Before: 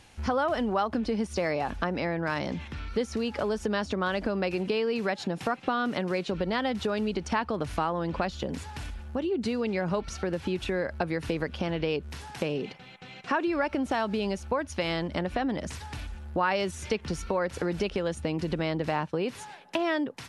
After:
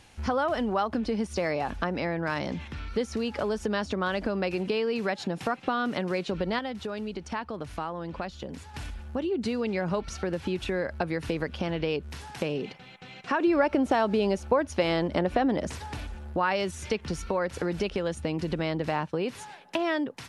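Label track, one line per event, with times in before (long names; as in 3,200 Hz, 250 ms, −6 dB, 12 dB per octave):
6.590000	8.740000	clip gain −5.5 dB
13.400000	16.330000	parametric band 470 Hz +6 dB 2.2 octaves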